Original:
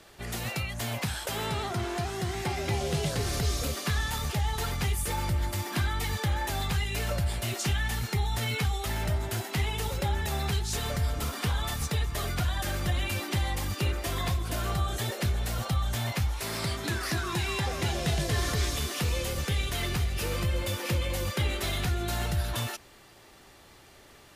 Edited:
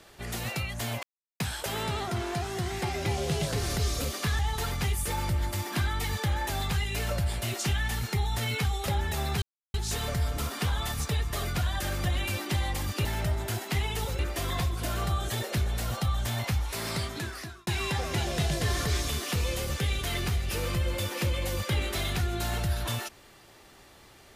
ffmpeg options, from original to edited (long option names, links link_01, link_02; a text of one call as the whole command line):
ffmpeg -i in.wav -filter_complex "[0:a]asplit=8[link_01][link_02][link_03][link_04][link_05][link_06][link_07][link_08];[link_01]atrim=end=1.03,asetpts=PTS-STARTPTS,afade=type=out:start_time=1.026:duration=0.004:curve=hsin,apad=pad_dur=0.37[link_09];[link_02]atrim=start=1.03:end=4.022,asetpts=PTS-STARTPTS,afade=type=in:duration=0.004:curve=hsin[link_10];[link_03]atrim=start=4.388:end=8.882[link_11];[link_04]atrim=start=10.018:end=10.56,asetpts=PTS-STARTPTS,afade=type=out:start_time=0.538:duration=0.004:curve=hsin,apad=pad_dur=0.32[link_12];[link_05]atrim=start=10.56:end=13.872,asetpts=PTS-STARTPTS,afade=type=in:duration=0.004:curve=hsin[link_13];[link_06]atrim=start=8.878:end=10.022[link_14];[link_07]atrim=start=13.868:end=17.35,asetpts=PTS-STARTPTS,afade=type=out:start_time=2.782:duration=0.7[link_15];[link_08]atrim=start=17.35,asetpts=PTS-STARTPTS,afade=type=in:duration=0.004:curve=hsin[link_16];[link_09][link_10]concat=n=2:v=0:a=1[link_17];[link_17][link_11]acrossfade=duration=0.004:curve1=hsin:curve2=hsin[link_18];[link_12][link_13]concat=n=2:v=0:a=1[link_19];[link_18][link_19]acrossfade=duration=0.004:curve1=hsin:curve2=hsin[link_20];[link_20][link_14]acrossfade=duration=0.004:curve1=hsin:curve2=hsin[link_21];[link_15][link_16]concat=n=2:v=0:a=1[link_22];[link_21][link_22]acrossfade=duration=0.004:curve1=hsin:curve2=hsin" out.wav